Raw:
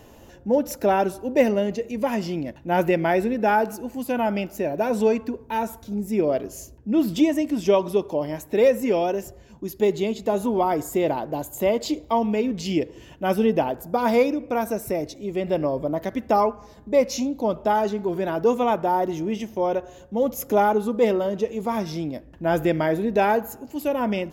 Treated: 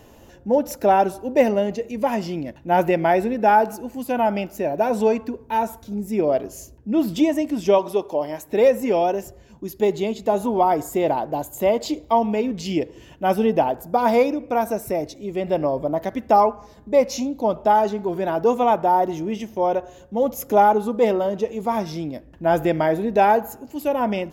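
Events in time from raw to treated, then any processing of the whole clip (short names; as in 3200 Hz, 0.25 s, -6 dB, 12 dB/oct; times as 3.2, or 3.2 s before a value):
7.78–8.48 tone controls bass -8 dB, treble +1 dB
whole clip: dynamic EQ 780 Hz, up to +6 dB, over -35 dBFS, Q 1.9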